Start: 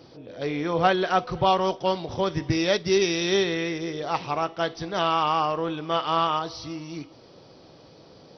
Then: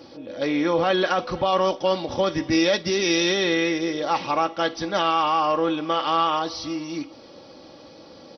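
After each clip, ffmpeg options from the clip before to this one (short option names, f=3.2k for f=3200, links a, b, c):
-af "alimiter=limit=-17dB:level=0:latency=1:release=24,lowshelf=f=87:g=-9,aecho=1:1:3.6:0.52,volume=4.5dB"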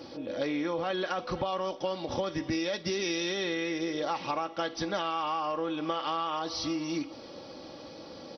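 -af "acompressor=threshold=-28dB:ratio=10"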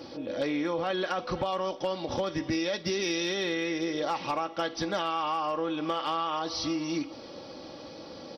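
-af "asoftclip=type=hard:threshold=-22.5dB,volume=1.5dB"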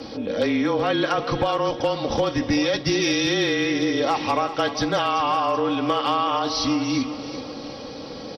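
-af "aecho=1:1:381|762|1143|1524:0.251|0.108|0.0464|0.02,afreqshift=-28,aresample=32000,aresample=44100,volume=8dB"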